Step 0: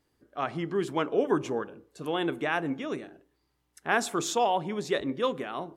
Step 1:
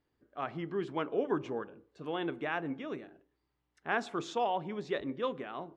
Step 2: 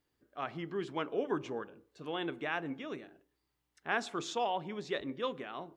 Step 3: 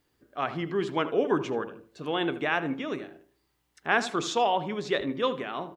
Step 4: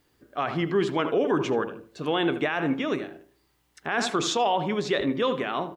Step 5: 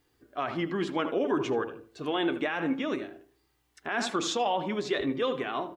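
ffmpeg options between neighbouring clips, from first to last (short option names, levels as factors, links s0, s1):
-af "lowpass=3600,volume=0.501"
-af "highshelf=f=2800:g=9,volume=0.75"
-filter_complex "[0:a]asplit=2[s0][s1];[s1]adelay=78,lowpass=f=2700:p=1,volume=0.224,asplit=2[s2][s3];[s3]adelay=78,lowpass=f=2700:p=1,volume=0.29,asplit=2[s4][s5];[s5]adelay=78,lowpass=f=2700:p=1,volume=0.29[s6];[s0][s2][s4][s6]amix=inputs=4:normalize=0,volume=2.66"
-af "alimiter=limit=0.0944:level=0:latency=1:release=28,volume=1.88"
-af "flanger=delay=2.5:depth=1.2:regen=-47:speed=0.57:shape=sinusoidal"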